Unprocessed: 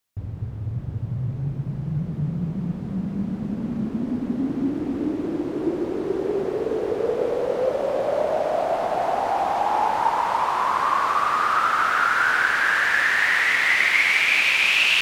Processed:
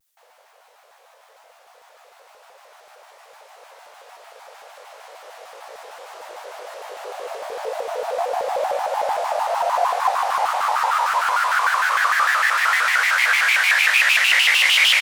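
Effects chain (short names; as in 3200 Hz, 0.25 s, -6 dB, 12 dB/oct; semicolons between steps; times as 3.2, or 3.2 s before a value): steep high-pass 580 Hz 72 dB/oct; high shelf 4800 Hz +10.5 dB; doubler 17 ms -3 dB; shaped vibrato square 6.6 Hz, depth 250 cents; gain -1 dB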